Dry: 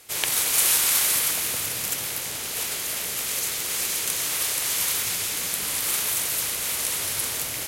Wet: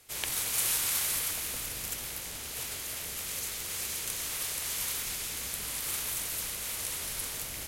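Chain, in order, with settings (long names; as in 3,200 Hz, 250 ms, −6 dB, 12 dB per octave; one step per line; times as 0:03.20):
sub-octave generator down 2 octaves, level +4 dB
level −9 dB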